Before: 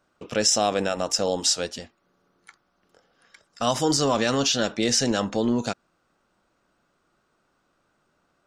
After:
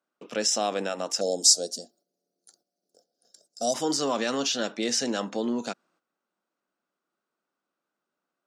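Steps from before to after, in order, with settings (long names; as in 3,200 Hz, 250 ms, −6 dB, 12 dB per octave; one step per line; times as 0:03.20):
high-pass filter 190 Hz 24 dB per octave
noise gate −60 dBFS, range −11 dB
0:01.21–0:03.74: drawn EQ curve 280 Hz 0 dB, 710 Hz +4 dB, 1,000 Hz −25 dB, 1,500 Hz −14 dB, 2,200 Hz −30 dB, 4,500 Hz +7 dB, 9,200 Hz +12 dB
level −4.5 dB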